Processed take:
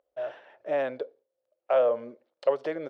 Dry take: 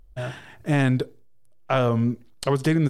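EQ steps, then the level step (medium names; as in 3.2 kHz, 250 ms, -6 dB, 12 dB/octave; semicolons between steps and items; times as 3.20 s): resonant high-pass 550 Hz, resonance Q 6.5; distance through air 220 m; -9.0 dB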